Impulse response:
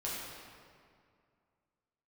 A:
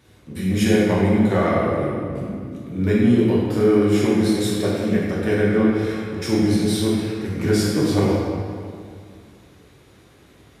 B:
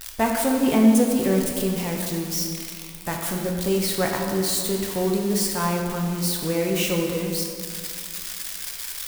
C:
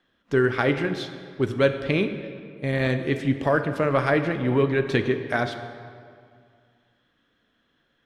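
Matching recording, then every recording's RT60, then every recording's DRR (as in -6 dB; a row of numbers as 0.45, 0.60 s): A; 2.2, 2.2, 2.2 s; -7.5, 0.0, 7.5 dB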